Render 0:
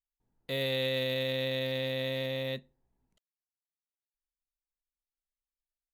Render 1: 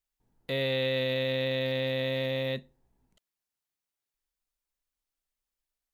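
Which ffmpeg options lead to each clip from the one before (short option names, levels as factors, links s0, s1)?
-filter_complex "[0:a]acrossover=split=4100[s0][s1];[s1]acompressor=threshold=0.00224:ratio=4:attack=1:release=60[s2];[s0][s2]amix=inputs=2:normalize=0,asplit=2[s3][s4];[s4]alimiter=level_in=2.66:limit=0.0631:level=0:latency=1,volume=0.376,volume=0.944[s5];[s3][s5]amix=inputs=2:normalize=0"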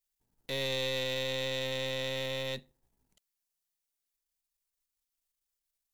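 -af "aeval=exprs='if(lt(val(0),0),0.447*val(0),val(0))':c=same,highshelf=f=3300:g=10.5,volume=0.668"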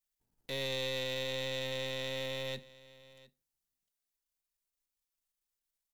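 -af "aecho=1:1:704:0.1,volume=0.708"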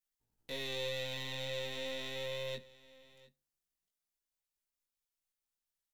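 -af "flanger=delay=17:depth=4.9:speed=0.41"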